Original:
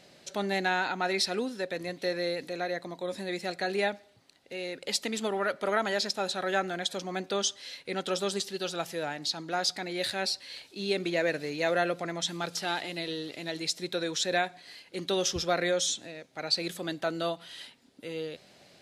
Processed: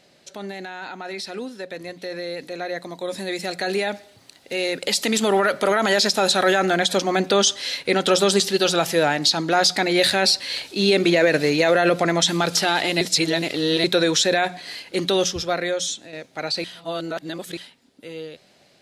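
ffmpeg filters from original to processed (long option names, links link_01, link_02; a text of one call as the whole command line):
ffmpeg -i in.wav -filter_complex "[0:a]asettb=1/sr,asplit=3[link_01][link_02][link_03];[link_01]atrim=end=2.764[link_04];[link_02]atrim=start=2.76:end=6.66,asetpts=PTS-STARTPTS,afade=type=in:duration=0.004:curve=qsin,afade=type=out:start_time=3.896:duration=0.004:curve=qsin,highshelf=frequency=5000:gain=6[link_05];[link_03]atrim=start=6.656[link_06];[link_04][link_05]acrossfade=duration=0.004:curve1=hsin:curve2=qsin[link_07];[link_07][link_06]acrossfade=duration=0.004:curve1=qsin:curve2=hsin,asplit=7[link_08][link_09][link_10][link_11][link_12][link_13][link_14];[link_08]atrim=end=13.012[link_15];[link_09]atrim=start=13.008:end=13.842,asetpts=PTS-STARTPTS,areverse[link_16];[link_10]atrim=start=13.838:end=15.242[link_17];[link_11]atrim=start=15.238:end=16.132,asetpts=PTS-STARTPTS,volume=-7.5dB[link_18];[link_12]atrim=start=16.128:end=16.642[link_19];[link_13]atrim=start=16.638:end=17.572,asetpts=PTS-STARTPTS,areverse[link_20];[link_14]atrim=start=17.568[link_21];[link_15][link_16]acrossfade=duration=0.004:curve1=hsin:curve2=hsin[link_22];[link_22][link_17]acrossfade=duration=0.004:curve1=hsin:curve2=hsin[link_23];[link_23][link_18]acrossfade=duration=0.004:curve1=hsin:curve2=hsin[link_24];[link_24][link_19]acrossfade=duration=0.004:curve1=hsin:curve2=hsin[link_25];[link_25][link_20]acrossfade=duration=0.004:curve1=hsin:curve2=hsin[link_26];[link_26][link_21]acrossfade=duration=0.004:curve1=hsin:curve2=hsin,bandreject=frequency=60:width_type=h:width=6,bandreject=frequency=120:width_type=h:width=6,bandreject=frequency=180:width_type=h:width=6,alimiter=limit=-23dB:level=0:latency=1:release=35,dynaudnorm=framelen=770:gausssize=11:maxgain=15.5dB" out.wav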